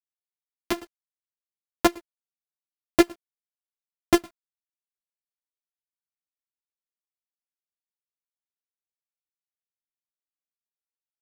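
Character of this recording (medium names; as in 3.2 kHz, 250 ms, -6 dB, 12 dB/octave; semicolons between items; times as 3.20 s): a buzz of ramps at a fixed pitch in blocks of 128 samples; chopped level 7.8 Hz, depth 65%, duty 50%; a quantiser's noise floor 10-bit, dither none; a shimmering, thickened sound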